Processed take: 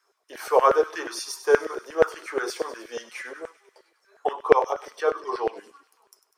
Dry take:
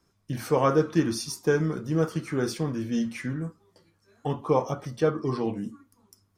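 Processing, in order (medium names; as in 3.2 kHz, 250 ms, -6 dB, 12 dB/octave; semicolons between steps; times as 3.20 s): resonant high-pass 400 Hz, resonance Q 4.1; LFO high-pass saw down 8.4 Hz 560–1700 Hz; feedback echo behind a high-pass 99 ms, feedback 66%, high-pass 2.8 kHz, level -12 dB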